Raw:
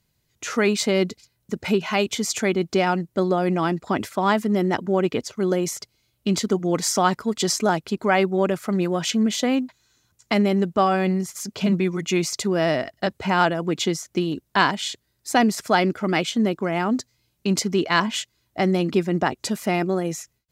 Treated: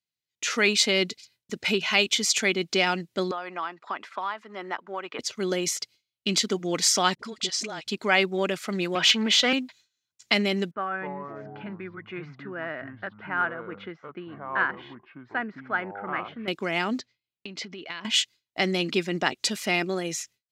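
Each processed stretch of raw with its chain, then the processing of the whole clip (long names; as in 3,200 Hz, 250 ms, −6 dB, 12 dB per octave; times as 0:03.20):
0:03.31–0:05.19: resonant band-pass 1,100 Hz, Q 2.2 + multiband upward and downward compressor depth 100%
0:07.15–0:07.88: low-pass filter 8,000 Hz + downward compressor 3 to 1, threshold −29 dBFS + all-pass dispersion highs, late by 43 ms, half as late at 470 Hz
0:08.95–0:09.53: high-shelf EQ 7,900 Hz −7 dB + mid-hump overdrive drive 17 dB, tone 2,900 Hz, clips at −11 dBFS + multiband upward and downward expander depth 40%
0:10.71–0:16.48: transistor ladder low-pass 1,700 Hz, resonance 60% + delay with pitch and tempo change per echo 232 ms, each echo −5 semitones, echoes 2, each echo −6 dB
0:16.99–0:18.05: low-pass filter 3,100 Hz + downward compressor 12 to 1, threshold −31 dBFS
whole clip: meter weighting curve D; noise gate with hold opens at −41 dBFS; level −5 dB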